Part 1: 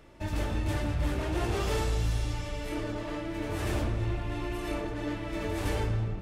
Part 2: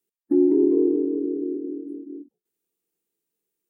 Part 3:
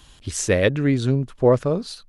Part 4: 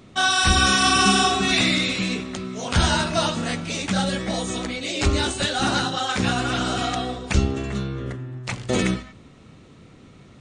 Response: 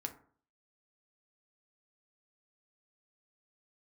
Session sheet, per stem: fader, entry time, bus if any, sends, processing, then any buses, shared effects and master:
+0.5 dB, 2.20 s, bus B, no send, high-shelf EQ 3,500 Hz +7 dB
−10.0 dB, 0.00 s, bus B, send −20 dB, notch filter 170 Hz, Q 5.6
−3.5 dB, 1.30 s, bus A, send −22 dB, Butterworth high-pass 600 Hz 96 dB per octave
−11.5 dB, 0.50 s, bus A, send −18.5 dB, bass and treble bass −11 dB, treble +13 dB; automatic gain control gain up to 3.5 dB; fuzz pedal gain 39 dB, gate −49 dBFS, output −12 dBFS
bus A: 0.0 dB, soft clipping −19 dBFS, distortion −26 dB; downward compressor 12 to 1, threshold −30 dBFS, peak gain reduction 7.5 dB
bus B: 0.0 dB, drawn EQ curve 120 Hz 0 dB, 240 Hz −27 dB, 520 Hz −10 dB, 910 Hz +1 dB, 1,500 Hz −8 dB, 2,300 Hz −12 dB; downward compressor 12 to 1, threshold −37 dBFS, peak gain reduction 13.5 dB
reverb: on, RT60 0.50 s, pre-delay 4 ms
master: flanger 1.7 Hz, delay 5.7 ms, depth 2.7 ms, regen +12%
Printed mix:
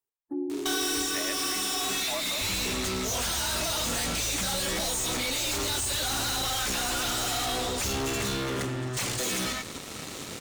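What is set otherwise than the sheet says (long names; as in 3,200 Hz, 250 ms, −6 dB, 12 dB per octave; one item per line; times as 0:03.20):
stem 2 −10.0 dB → +1.0 dB
stem 3: entry 1.30 s → 0.65 s
master: missing flanger 1.7 Hz, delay 5.7 ms, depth 2.7 ms, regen +12%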